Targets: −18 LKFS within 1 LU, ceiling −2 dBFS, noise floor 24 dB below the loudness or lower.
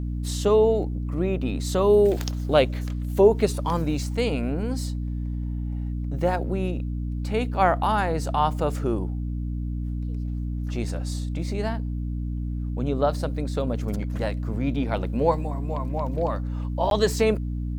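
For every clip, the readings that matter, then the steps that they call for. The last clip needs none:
number of dropouts 1; longest dropout 12 ms; mains hum 60 Hz; hum harmonics up to 300 Hz; level of the hum −26 dBFS; integrated loudness −25.5 LKFS; sample peak −5.5 dBFS; target loudness −18.0 LKFS
→ repair the gap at 0:16.90, 12 ms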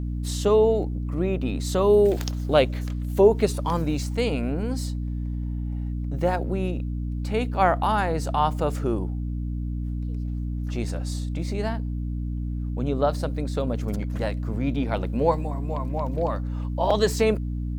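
number of dropouts 0; mains hum 60 Hz; hum harmonics up to 300 Hz; level of the hum −26 dBFS
→ hum removal 60 Hz, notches 5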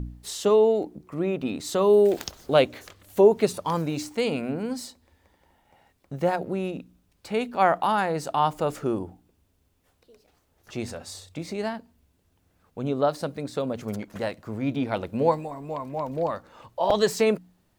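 mains hum none found; integrated loudness −25.5 LKFS; sample peak −6.5 dBFS; target loudness −18.0 LKFS
→ level +7.5 dB
brickwall limiter −2 dBFS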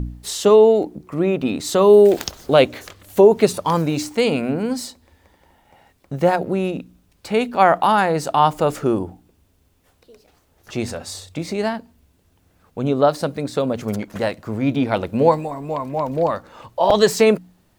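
integrated loudness −18.5 LKFS; sample peak −2.0 dBFS; background noise floor −61 dBFS

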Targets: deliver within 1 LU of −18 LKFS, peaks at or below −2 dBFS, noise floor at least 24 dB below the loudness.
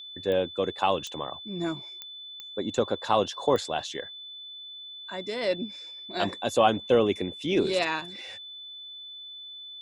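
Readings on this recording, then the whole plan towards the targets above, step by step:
number of clicks 5; interfering tone 3,500 Hz; level of the tone −40 dBFS; integrated loudness −28.0 LKFS; sample peak −8.0 dBFS; target loudness −18.0 LKFS
→ click removal
notch filter 3,500 Hz, Q 30
level +10 dB
brickwall limiter −2 dBFS

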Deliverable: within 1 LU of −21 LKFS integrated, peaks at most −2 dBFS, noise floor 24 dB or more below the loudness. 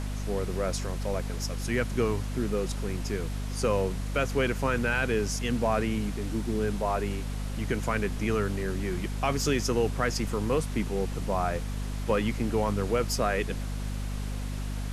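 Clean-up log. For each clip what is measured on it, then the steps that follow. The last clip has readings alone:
mains hum 50 Hz; hum harmonics up to 250 Hz; level of the hum −30 dBFS; background noise floor −33 dBFS; target noise floor −54 dBFS; integrated loudness −29.5 LKFS; sample peak −13.0 dBFS; target loudness −21.0 LKFS
→ mains-hum notches 50/100/150/200/250 Hz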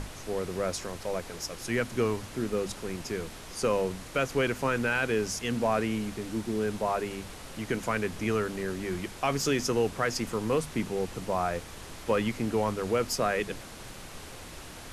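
mains hum none found; background noise floor −44 dBFS; target noise floor −55 dBFS
→ noise reduction from a noise print 11 dB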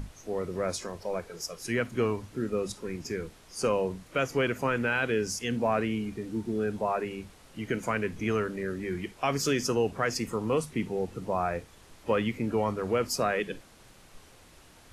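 background noise floor −55 dBFS; integrated loudness −30.5 LKFS; sample peak −14.5 dBFS; target loudness −21.0 LKFS
→ level +9.5 dB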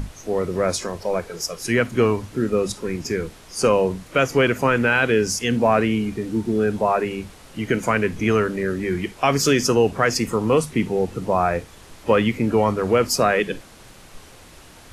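integrated loudness −21.0 LKFS; sample peak −5.0 dBFS; background noise floor −46 dBFS

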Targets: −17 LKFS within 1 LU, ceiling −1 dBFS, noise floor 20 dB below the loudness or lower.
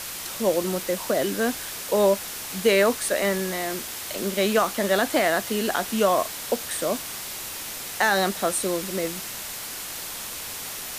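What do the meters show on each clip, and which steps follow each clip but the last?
background noise floor −35 dBFS; target noise floor −45 dBFS; integrated loudness −25.0 LKFS; sample peak −8.0 dBFS; target loudness −17.0 LKFS
→ broadband denoise 10 dB, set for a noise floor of −35 dBFS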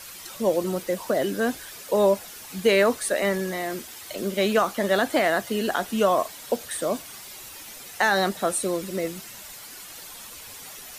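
background noise floor −42 dBFS; target noise floor −45 dBFS
→ broadband denoise 6 dB, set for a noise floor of −42 dBFS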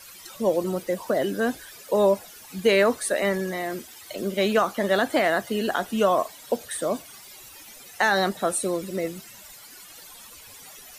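background noise floor −46 dBFS; integrated loudness −24.5 LKFS; sample peak −9.0 dBFS; target loudness −17.0 LKFS
→ level +7.5 dB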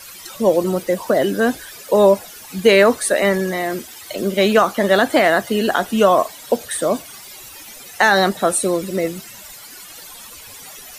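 integrated loudness −17.0 LKFS; sample peak −1.5 dBFS; background noise floor −39 dBFS

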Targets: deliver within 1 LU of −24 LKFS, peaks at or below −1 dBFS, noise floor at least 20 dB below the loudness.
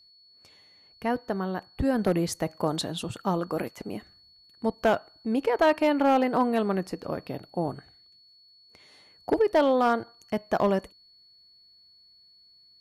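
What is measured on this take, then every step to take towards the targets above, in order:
share of clipped samples 0.5%; peaks flattened at −15.0 dBFS; interfering tone 4,400 Hz; level of the tone −55 dBFS; integrated loudness −27.0 LKFS; sample peak −15.0 dBFS; target loudness −24.0 LKFS
→ clipped peaks rebuilt −15 dBFS
notch filter 4,400 Hz, Q 30
level +3 dB

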